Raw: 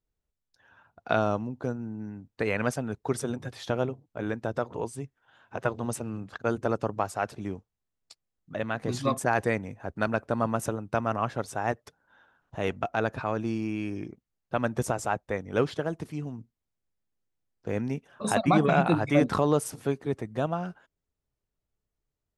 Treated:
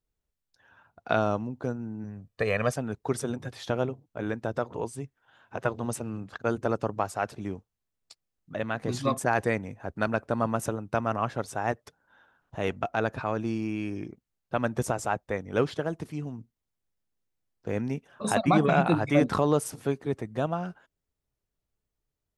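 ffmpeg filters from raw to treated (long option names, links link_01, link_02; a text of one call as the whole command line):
ffmpeg -i in.wav -filter_complex "[0:a]asettb=1/sr,asplit=3[link_01][link_02][link_03];[link_01]atrim=end=2.044[link_04];[link_02]atrim=start=2.04:end=2.72,asetpts=PTS-STARTPTS,afade=type=in:duration=0.004:curve=qsin,afade=type=out:start_time=0.676:duration=0.004:curve=qsin,aecho=1:1:1.7:0.6,atrim=end_sample=29988[link_05];[link_03]atrim=start=2.716[link_06];[link_04][link_05]acrossfade=duration=0.004:curve1=hsin:curve2=qsin[link_07];[link_07][link_06]acrossfade=duration=0.004:curve1=qsin:curve2=hsin" out.wav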